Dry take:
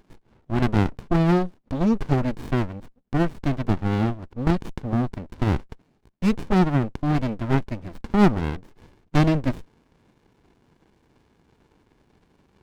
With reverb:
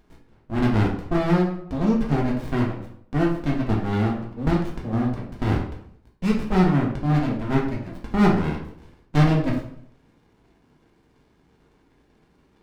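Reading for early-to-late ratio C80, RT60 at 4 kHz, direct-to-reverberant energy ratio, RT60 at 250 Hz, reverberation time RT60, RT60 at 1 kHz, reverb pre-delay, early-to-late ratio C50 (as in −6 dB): 9.5 dB, 0.50 s, −2.0 dB, 0.70 s, 0.65 s, 0.65 s, 3 ms, 6.0 dB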